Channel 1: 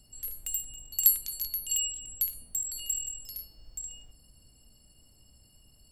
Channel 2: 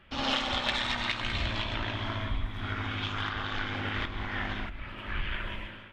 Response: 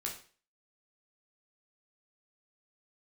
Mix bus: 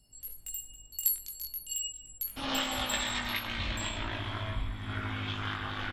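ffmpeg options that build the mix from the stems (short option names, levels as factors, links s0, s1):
-filter_complex "[0:a]volume=0.668,asplit=2[s0][s1];[s1]volume=0.178[s2];[1:a]adelay=2250,volume=1[s3];[2:a]atrim=start_sample=2205[s4];[s2][s4]afir=irnorm=-1:irlink=0[s5];[s0][s3][s5]amix=inputs=3:normalize=0,flanger=delay=19:depth=2.2:speed=0.39"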